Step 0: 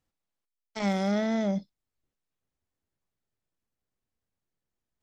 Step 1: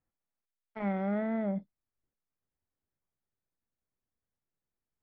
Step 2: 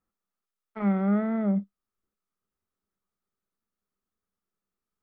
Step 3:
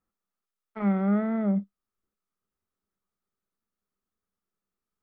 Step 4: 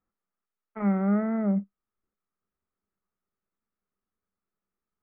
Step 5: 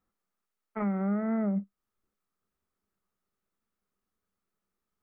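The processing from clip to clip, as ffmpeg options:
ffmpeg -i in.wav -af "lowpass=frequency=2100:width=0.5412,lowpass=frequency=2100:width=1.3066,volume=-4.5dB" out.wav
ffmpeg -i in.wav -af "equalizer=frequency=125:width_type=o:width=0.33:gain=-11,equalizer=frequency=200:width_type=o:width=0.33:gain=10,equalizer=frequency=400:width_type=o:width=0.33:gain=7,equalizer=frequency=1250:width_type=o:width=0.33:gain=12" out.wav
ffmpeg -i in.wav -af anull out.wav
ffmpeg -i in.wav -af "lowpass=frequency=2300:width=0.5412,lowpass=frequency=2300:width=1.3066" out.wav
ffmpeg -i in.wav -af "alimiter=level_in=2dB:limit=-24dB:level=0:latency=1:release=280,volume=-2dB,volume=3dB" out.wav

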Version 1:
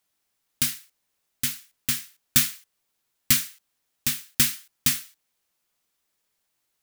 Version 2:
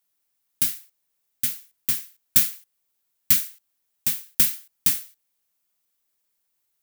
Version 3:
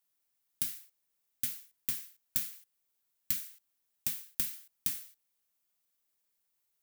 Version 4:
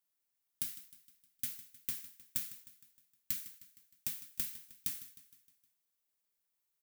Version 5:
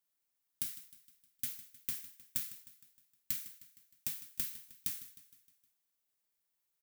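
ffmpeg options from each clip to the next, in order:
ffmpeg -i in.wav -af "highshelf=frequency=10000:gain=11,volume=-5.5dB" out.wav
ffmpeg -i in.wav -af "acompressor=threshold=-25dB:ratio=5,volume=-5dB" out.wav
ffmpeg -i in.wav -af "aecho=1:1:155|310|465|620|775:0.158|0.084|0.0445|0.0236|0.0125,volume=-4.5dB" out.wav
ffmpeg -i in.wav -af "aecho=1:1:36|47:0.133|0.168" out.wav

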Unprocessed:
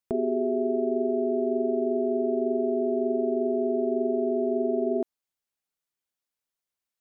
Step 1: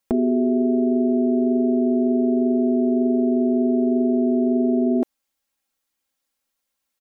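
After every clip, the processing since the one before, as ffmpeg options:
ffmpeg -i in.wav -af "aecho=1:1:3.7:0.68,volume=8dB" out.wav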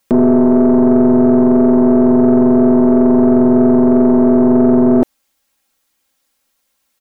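ffmpeg -i in.wav -filter_complex "[0:a]asplit=2[link_01][link_02];[link_02]alimiter=limit=-17dB:level=0:latency=1,volume=-1dB[link_03];[link_01][link_03]amix=inputs=2:normalize=0,aeval=exprs='(tanh(3.98*val(0)+0.45)-tanh(0.45))/3.98':channel_layout=same,volume=8.5dB" out.wav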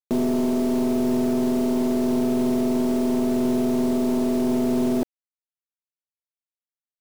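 ffmpeg -i in.wav -af "alimiter=limit=-7dB:level=0:latency=1:release=28,acrusher=bits=4:mix=0:aa=0.000001,volume=-8dB" out.wav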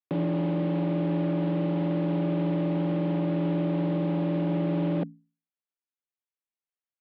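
ffmpeg -i in.wav -af "bandreject=frequency=60:width_type=h:width=6,bandreject=frequency=120:width_type=h:width=6,bandreject=frequency=180:width_type=h:width=6,bandreject=frequency=240:width_type=h:width=6,bandreject=frequency=300:width_type=h:width=6,bandreject=frequency=360:width_type=h:width=6,highpass=frequency=250:width_type=q:width=0.5412,highpass=frequency=250:width_type=q:width=1.307,lowpass=frequency=3400:width_type=q:width=0.5176,lowpass=frequency=3400:width_type=q:width=0.7071,lowpass=frequency=3400:width_type=q:width=1.932,afreqshift=-78,volume=-2dB" out.wav

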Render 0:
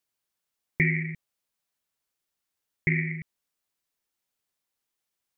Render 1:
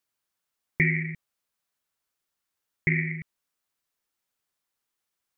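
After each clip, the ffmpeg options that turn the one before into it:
ffmpeg -i in.wav -af "equalizer=frequency=1300:width=1.5:gain=3.5" out.wav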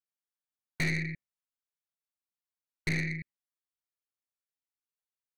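ffmpeg -i in.wav -af "afftdn=noise_reduction=15:noise_floor=-53,aeval=exprs='(tanh(20*val(0)+0.55)-tanh(0.55))/20':channel_layout=same" out.wav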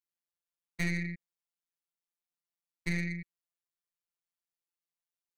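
ffmpeg -i in.wav -af "afftfilt=real='hypot(re,im)*cos(PI*b)':imag='0':win_size=1024:overlap=0.75" out.wav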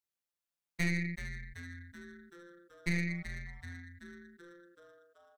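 ffmpeg -i in.wav -filter_complex "[0:a]asplit=8[link_01][link_02][link_03][link_04][link_05][link_06][link_07][link_08];[link_02]adelay=381,afreqshift=-130,volume=-10dB[link_09];[link_03]adelay=762,afreqshift=-260,volume=-14.4dB[link_10];[link_04]adelay=1143,afreqshift=-390,volume=-18.9dB[link_11];[link_05]adelay=1524,afreqshift=-520,volume=-23.3dB[link_12];[link_06]adelay=1905,afreqshift=-650,volume=-27.7dB[link_13];[link_07]adelay=2286,afreqshift=-780,volume=-32.2dB[link_14];[link_08]adelay=2667,afreqshift=-910,volume=-36.6dB[link_15];[link_01][link_09][link_10][link_11][link_12][link_13][link_14][link_15]amix=inputs=8:normalize=0" out.wav

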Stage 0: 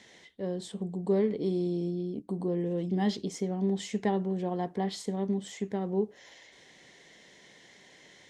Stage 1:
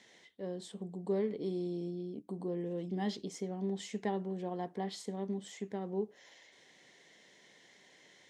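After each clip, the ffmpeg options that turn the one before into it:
ffmpeg -i in.wav -af "highpass=frequency=170:poles=1,volume=-5.5dB" out.wav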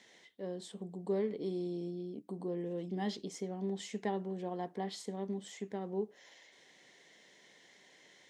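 ffmpeg -i in.wav -af "lowshelf=frequency=110:gain=-6.5" out.wav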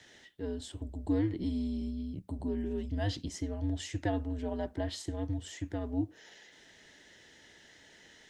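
ffmpeg -i in.wav -af "afreqshift=-110,volume=4dB" out.wav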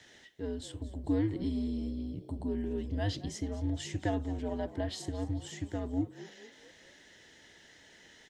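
ffmpeg -i in.wav -filter_complex "[0:a]asplit=5[link_01][link_02][link_03][link_04][link_05];[link_02]adelay=221,afreqshift=65,volume=-17dB[link_06];[link_03]adelay=442,afreqshift=130,volume=-23dB[link_07];[link_04]adelay=663,afreqshift=195,volume=-29dB[link_08];[link_05]adelay=884,afreqshift=260,volume=-35.1dB[link_09];[link_01][link_06][link_07][link_08][link_09]amix=inputs=5:normalize=0" out.wav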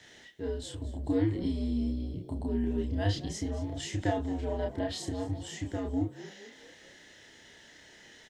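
ffmpeg -i in.wav -filter_complex "[0:a]asplit=2[link_01][link_02];[link_02]adelay=30,volume=-2dB[link_03];[link_01][link_03]amix=inputs=2:normalize=0,volume=1dB" out.wav

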